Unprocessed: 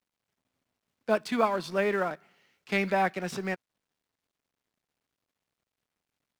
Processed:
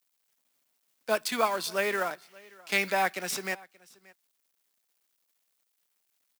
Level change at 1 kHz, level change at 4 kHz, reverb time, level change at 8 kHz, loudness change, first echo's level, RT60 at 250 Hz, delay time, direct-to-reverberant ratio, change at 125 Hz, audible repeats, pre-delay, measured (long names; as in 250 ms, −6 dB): −0.5 dB, +6.5 dB, no reverb audible, +11.0 dB, 0.0 dB, −24.0 dB, no reverb audible, 579 ms, no reverb audible, −9.0 dB, 1, no reverb audible